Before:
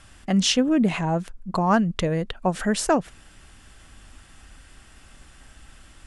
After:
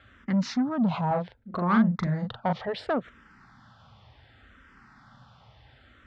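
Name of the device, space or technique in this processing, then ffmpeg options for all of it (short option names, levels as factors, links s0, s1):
barber-pole phaser into a guitar amplifier: -filter_complex "[0:a]asplit=2[s0][s1];[s1]afreqshift=-0.68[s2];[s0][s2]amix=inputs=2:normalize=1,asoftclip=type=tanh:threshold=0.0891,lowpass=9300,highpass=84,equalizer=f=120:t=q:w=4:g=9,equalizer=f=230:t=q:w=4:g=4,equalizer=f=330:t=q:w=4:g=-7,equalizer=f=900:t=q:w=4:g=5,equalizer=f=1300:t=q:w=4:g=5,equalizer=f=2700:t=q:w=4:g=-8,lowpass=f=4100:w=0.5412,lowpass=f=4100:w=1.3066,asettb=1/sr,asplit=3[s3][s4][s5];[s3]atrim=end=1.074[s6];[s4]atrim=start=1.07:end=2.53,asetpts=PTS-STARTPTS,afade=t=in:d=0.004:c=qsin,afade=t=out:st=1.456:d=0.004:c=qsin,asplit=2[s7][s8];[s8]adelay=40,volume=0.596[s9];[s7][s9]amix=inputs=2:normalize=0,atrim=end_sample=64386[s10];[s5]atrim=start=2.526[s11];[s6][s10]acrossfade=d=0.004:c1=hsin:c2=qsin[s12];[s12][s11]acrossfade=d=0.004:c1=qsin:c2=hsin"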